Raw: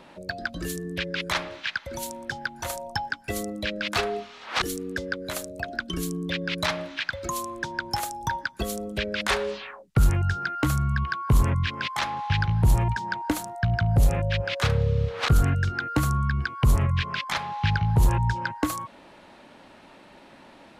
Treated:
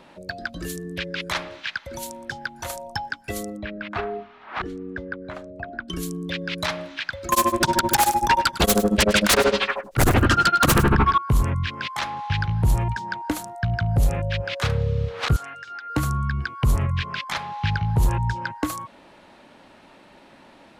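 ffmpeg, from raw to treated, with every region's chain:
-filter_complex "[0:a]asettb=1/sr,asplit=3[a][b][c];[a]atrim=end=3.574[d];[b]atrim=start=3.57:end=5.88,asetpts=PTS-STARTPTS,afade=t=in:d=0.004:c=qsin,afade=t=out:st=2.306:d=0.004:c=qsin,lowpass=1.7k,bandreject=f=510:w=5.7[e];[c]atrim=start=5.876[f];[d][e]acrossfade=d=0.004:c1=hsin:c2=qsin[g];[g][f]acrossfade=d=0.004:c1=qsin:c2=hsin,asettb=1/sr,asplit=3[h][i][j];[h]atrim=end=7.324[k];[i]atrim=start=7.32:end=11.18,asetpts=PTS-STARTPTS,afade=t=in:d=0.004:c=qsin,afade=t=out:st=3.856:d=0.004:c=qsin,tremolo=f=13:d=0.99,aeval=exprs='0.237*sin(PI/2*6.31*val(0)/0.237)':c=same,aecho=1:1:102:0.178,atrim=end_sample=170226[l];[j]atrim=start=11.176[m];[k][l]acrossfade=d=0.004:c1=hsin:c2=qsin[n];[n][m]acrossfade=d=0.004:c1=qsin:c2=hsin,asettb=1/sr,asplit=3[o][p][q];[o]atrim=end=15.364[r];[p]atrim=start=15.36:end=15.9,asetpts=PTS-STARTPTS,afade=t=in:d=0.004:c=qsin,afade=t=out:st=0.536:d=0.004:c=qsin,highpass=770,lowpass=7.8k,acompressor=threshold=-36dB:ratio=4:attack=3.2:release=140:knee=1:detection=peak,aecho=1:1:7.2:0.44,atrim=end_sample=23814[s];[q]atrim=start=15.896[t];[r][s]acrossfade=d=0.004:c1=hsin:c2=qsin[u];[u][t]acrossfade=d=0.004:c1=qsin:c2=hsin"

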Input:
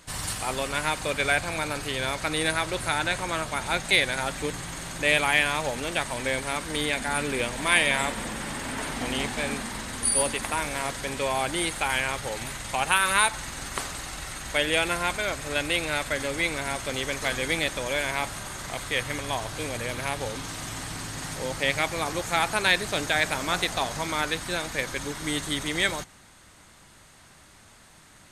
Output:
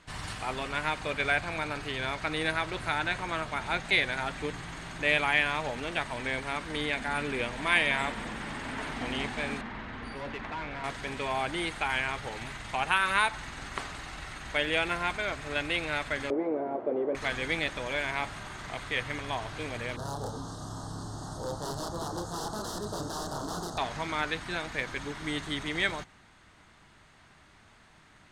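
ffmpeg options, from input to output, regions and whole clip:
-filter_complex "[0:a]asettb=1/sr,asplit=3[a][b][c];[a]atrim=end=9.614[d];[b]atrim=start=9.61:end=10.84,asetpts=PTS-STARTPTS,afade=t=in:d=0.004:c=qsin,afade=t=out:st=1.226:d=0.004:c=qsin,lowpass=2.7k,volume=29.5dB,asoftclip=hard,volume=-29.5dB[e];[c]atrim=start=10.836[f];[d][e]acrossfade=d=0.004:c1=hsin:c2=qsin[g];[g][f]acrossfade=d=0.004:c1=qsin:c2=hsin,asettb=1/sr,asplit=3[h][i][j];[h]atrim=end=16.304[k];[i]atrim=start=16.3:end=17.15,asetpts=PTS-STARTPTS,afade=t=in:d=0.004:c=qsin,afade=t=out:st=0.846:d=0.004:c=qsin,aeval=exprs='0.237*sin(PI/2*2.82*val(0)/0.237)':c=same,asuperpass=centerf=440:order=4:qfactor=1.3[l];[j]atrim=start=17.146[m];[k][l]acrossfade=d=0.004:c1=hsin:c2=qsin[n];[n][m]acrossfade=d=0.004:c1=qsin:c2=hsin,asettb=1/sr,asplit=3[o][p][q];[o]atrim=end=19.964[r];[p]atrim=start=19.96:end=23.78,asetpts=PTS-STARTPTS,afade=t=in:d=0.004:c=qsin,afade=t=out:st=3.816:d=0.004:c=qsin,asplit=2[s][t];[t]adelay=29,volume=-2dB[u];[s][u]amix=inputs=2:normalize=0,atrim=end_sample=168462,aeval=exprs='(mod(10*val(0)+1,2)-1)/10':c=same,asuperstop=centerf=2300:order=4:qfactor=0.7[v];[q]atrim=start=23.776[w];[r][v]acrossfade=d=0.004:c1=hsin:c2=qsin[x];[x][w]acrossfade=d=0.004:c1=qsin:c2=hsin,lowpass=2.4k,aemphasis=mode=production:type=75kf,bandreject=f=540:w=12,volume=-4dB"

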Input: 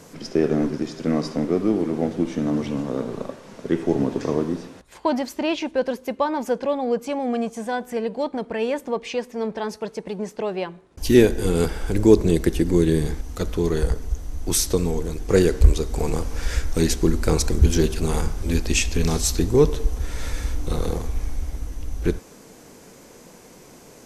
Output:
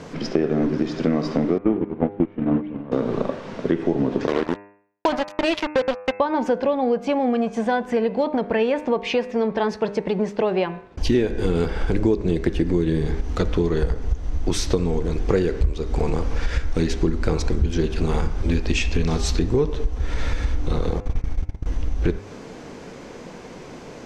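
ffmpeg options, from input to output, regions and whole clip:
-filter_complex "[0:a]asettb=1/sr,asplit=3[a][b][c];[a]atrim=end=1.584[d];[b]atrim=start=1.58:end=2.92,asetpts=PTS-STARTPTS,afade=t=in:d=0.004:c=qsin,afade=t=out:st=1.336:d=0.004:c=qsin,lowpass=f=2.8k:w=0.5412,lowpass=f=2.8k:w=1.3066,acontrast=75,agate=range=-23dB:threshold=-15dB:ratio=16:release=100:detection=peak[e];[c]atrim=start=2.916[f];[d][e]acrossfade=d=0.004:c1=hsin:c2=qsin[g];[g][f]acrossfade=d=0.004:c1=qsin:c2=hsin,asettb=1/sr,asplit=3[h][i][j];[h]atrim=end=4.274[k];[i]atrim=start=4.27:end=6.2,asetpts=PTS-STARTPTS,afade=t=in:d=0.004:c=qsin,afade=t=out:st=1.926:d=0.004:c=qsin,highpass=300,highshelf=f=5.6k:g=6.5,acrusher=bits=3:mix=0:aa=0.5[l];[j]atrim=start=6.196[m];[k][l]acrossfade=d=0.004:c1=hsin:c2=qsin[n];[n][m]acrossfade=d=0.004:c1=qsin:c2=hsin,asettb=1/sr,asplit=3[o][p][q];[o]atrim=end=21.004[r];[p]atrim=start=21:end=21.66,asetpts=PTS-STARTPTS,afade=t=in:d=0.004:c=qsin,afade=t=out:st=0.656:d=0.004:c=qsin,agate=range=-25dB:threshold=-24dB:ratio=16:release=100:detection=peak,acompressor=mode=upward:threshold=-43dB:ratio=2.5:attack=3.2:release=140:knee=2.83:detection=peak[s];[q]atrim=start=21.656[t];[r][s]acrossfade=d=0.004:c1=hsin:c2=qsin[u];[u][t]acrossfade=d=0.004:c1=qsin:c2=hsin,lowpass=3.7k,bandreject=f=101:t=h:w=4,bandreject=f=202:t=h:w=4,bandreject=f=303:t=h:w=4,bandreject=f=404:t=h:w=4,bandreject=f=505:t=h:w=4,bandreject=f=606:t=h:w=4,bandreject=f=707:t=h:w=4,bandreject=f=808:t=h:w=4,bandreject=f=909:t=h:w=4,bandreject=f=1.01k:t=h:w=4,bandreject=f=1.111k:t=h:w=4,bandreject=f=1.212k:t=h:w=4,bandreject=f=1.313k:t=h:w=4,bandreject=f=1.414k:t=h:w=4,bandreject=f=1.515k:t=h:w=4,bandreject=f=1.616k:t=h:w=4,bandreject=f=1.717k:t=h:w=4,bandreject=f=1.818k:t=h:w=4,bandreject=f=1.919k:t=h:w=4,bandreject=f=2.02k:t=h:w=4,bandreject=f=2.121k:t=h:w=4,bandreject=f=2.222k:t=h:w=4,bandreject=f=2.323k:t=h:w=4,bandreject=f=2.424k:t=h:w=4,bandreject=f=2.525k:t=h:w=4,bandreject=f=2.626k:t=h:w=4,bandreject=f=2.727k:t=h:w=4,acompressor=threshold=-26dB:ratio=6,volume=9dB"

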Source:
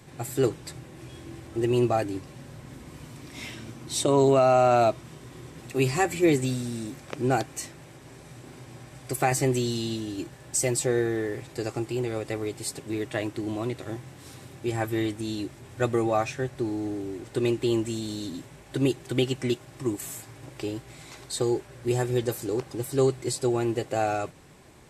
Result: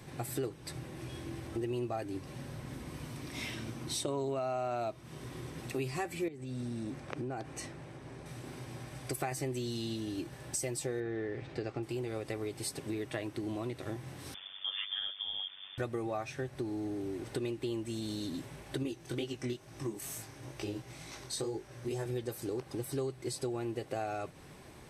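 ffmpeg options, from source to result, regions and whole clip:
-filter_complex "[0:a]asettb=1/sr,asplit=3[a][b][c];[a]atrim=end=6.284[d];[b]atrim=start=6.28:end=8.26,asetpts=PTS-STARTPTS,afade=t=in:d=0.004:c=qsin,afade=t=out:st=1.976:d=0.004:c=qsin,lowpass=f=11k:w=0.5412,lowpass=f=11k:w=1.3066,highshelf=f=2.9k:g=-9,acompressor=threshold=-31dB:ratio=8:attack=3.2:release=140:knee=1:detection=peak[e];[c]atrim=start=8.256[f];[d][e]acrossfade=d=0.004:c1=hsin:c2=qsin[g];[g][f]acrossfade=d=0.004:c1=qsin:c2=hsin,asettb=1/sr,asplit=3[h][i][j];[h]atrim=end=11.004[k];[i]atrim=start=11:end=11.83,asetpts=PTS-STARTPTS,afade=t=in:d=0.004:c=qsin,afade=t=out:st=0.826:d=0.004:c=qsin,lowpass=3.6k,equalizer=f=1k:w=4.7:g=-4[l];[j]atrim=start=11.826[m];[k][l]acrossfade=d=0.004:c1=hsin:c2=qsin[n];[n][m]acrossfade=d=0.004:c1=qsin:c2=hsin,asettb=1/sr,asplit=3[o][p][q];[o]atrim=end=14.344[r];[p]atrim=start=14.34:end=15.78,asetpts=PTS-STARTPTS,afade=t=in:d=0.004:c=qsin,afade=t=out:st=1.436:d=0.004:c=qsin,lowpass=f=3.1k:t=q:w=0.5098,lowpass=f=3.1k:t=q:w=0.6013,lowpass=f=3.1k:t=q:w=0.9,lowpass=f=3.1k:t=q:w=2.563,afreqshift=-3600,aeval=exprs='val(0)*sin(2*PI*48*n/s)':c=same[s];[q]atrim=start=15.776[t];[r][s]acrossfade=d=0.004:c1=hsin:c2=qsin[u];[u][t]acrossfade=d=0.004:c1=qsin:c2=hsin,asettb=1/sr,asplit=3[v][w][x];[v]atrim=end=18.834[y];[w]atrim=start=18.83:end=22.06,asetpts=PTS-STARTPTS,afade=t=in:d=0.004:c=qsin,afade=t=out:st=3.226:d=0.004:c=qsin,equalizer=f=6k:t=o:w=0.27:g=6.5,flanger=delay=18:depth=6.4:speed=2.2[z];[x]atrim=start=22.056[aa];[y][z]acrossfade=d=0.004:c1=hsin:c2=qsin[ab];[ab][aa]acrossfade=d=0.004:c1=qsin:c2=hsin,bandreject=f=7.2k:w=6.7,acompressor=threshold=-35dB:ratio=4"

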